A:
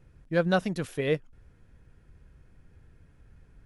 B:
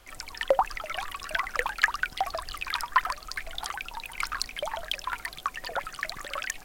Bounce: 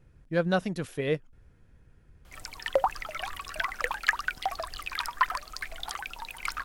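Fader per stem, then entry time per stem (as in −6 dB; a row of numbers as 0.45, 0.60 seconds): −1.5, −2.0 decibels; 0.00, 2.25 seconds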